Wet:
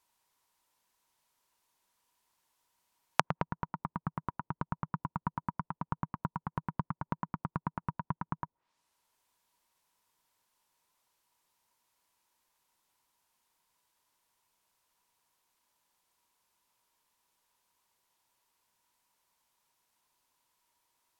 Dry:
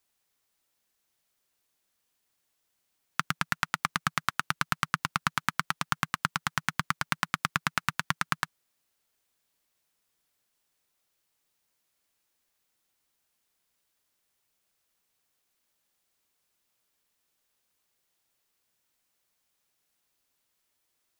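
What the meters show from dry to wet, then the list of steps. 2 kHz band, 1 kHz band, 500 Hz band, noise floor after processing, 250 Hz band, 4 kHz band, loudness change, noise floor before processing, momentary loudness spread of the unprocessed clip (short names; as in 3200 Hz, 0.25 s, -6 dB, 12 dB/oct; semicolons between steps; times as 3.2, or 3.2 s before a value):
-15.0 dB, -5.5 dB, +3.5 dB, under -85 dBFS, +0.5 dB, -16.5 dB, -7.5 dB, -78 dBFS, 3 LU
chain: bell 960 Hz +15 dB 0.3 oct; treble ducked by the level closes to 490 Hz, closed at -27.5 dBFS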